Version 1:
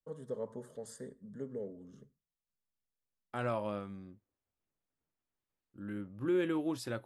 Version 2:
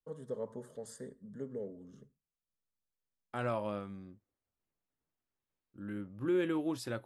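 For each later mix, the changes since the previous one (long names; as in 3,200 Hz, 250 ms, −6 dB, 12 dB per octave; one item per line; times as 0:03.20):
nothing changed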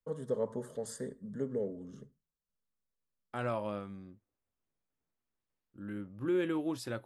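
first voice +6.0 dB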